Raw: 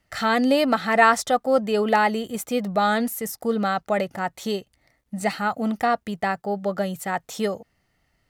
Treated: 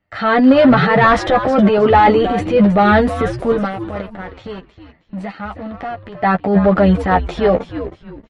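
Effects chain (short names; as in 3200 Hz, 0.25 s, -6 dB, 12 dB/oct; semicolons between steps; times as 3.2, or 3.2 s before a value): low shelf 72 Hz -3.5 dB; 3.52–6.21 compressor 4:1, threshold -38 dBFS, peak gain reduction 17 dB; sample leveller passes 2; AGC gain up to 4 dB; transient shaper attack -4 dB, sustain +9 dB; flange 0.74 Hz, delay 9.7 ms, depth 2.2 ms, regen +10%; one-sided clip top -11.5 dBFS, bottom -8 dBFS; air absorption 370 m; frequency-shifting echo 0.316 s, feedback 31%, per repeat -120 Hz, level -11 dB; gain +6.5 dB; MP3 48 kbps 48000 Hz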